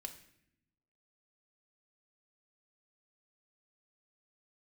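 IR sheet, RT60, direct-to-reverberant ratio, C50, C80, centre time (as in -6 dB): 0.70 s, 3.0 dB, 11.0 dB, 14.0 dB, 12 ms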